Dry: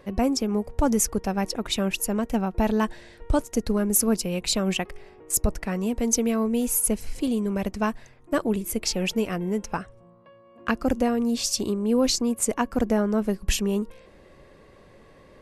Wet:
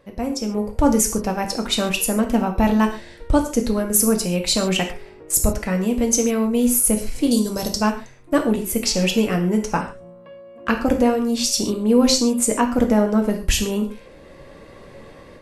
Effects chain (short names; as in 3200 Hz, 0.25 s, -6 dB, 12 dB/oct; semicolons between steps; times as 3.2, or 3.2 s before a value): 7.31–7.81 resonant high shelf 3400 Hz +12.5 dB, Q 3; AGC gain up to 13 dB; reverb, pre-delay 3 ms, DRR 3.5 dB; gain -5 dB